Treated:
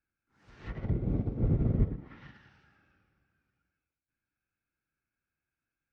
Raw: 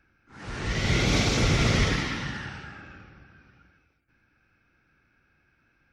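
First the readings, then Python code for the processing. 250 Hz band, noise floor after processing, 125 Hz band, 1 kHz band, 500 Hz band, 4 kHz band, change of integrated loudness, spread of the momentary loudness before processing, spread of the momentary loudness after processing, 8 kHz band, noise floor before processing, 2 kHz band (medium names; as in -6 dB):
-6.0 dB, under -85 dBFS, -4.5 dB, -20.0 dB, -10.0 dB, under -35 dB, -6.0 dB, 20 LU, 18 LU, under -40 dB, -69 dBFS, -26.5 dB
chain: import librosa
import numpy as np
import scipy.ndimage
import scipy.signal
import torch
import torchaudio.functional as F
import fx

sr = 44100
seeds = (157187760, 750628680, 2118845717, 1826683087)

y = fx.env_lowpass_down(x, sr, base_hz=380.0, full_db=-21.0)
y = fx.upward_expand(y, sr, threshold_db=-36.0, expansion=2.5)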